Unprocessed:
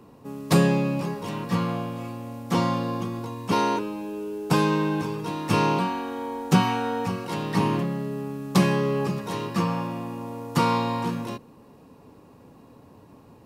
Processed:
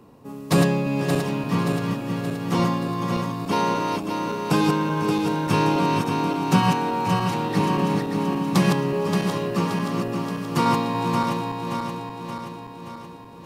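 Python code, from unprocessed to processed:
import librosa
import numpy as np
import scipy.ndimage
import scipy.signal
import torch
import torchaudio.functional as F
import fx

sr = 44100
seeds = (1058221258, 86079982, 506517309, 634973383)

y = fx.reverse_delay_fb(x, sr, ms=288, feedback_pct=75, wet_db=-4.0)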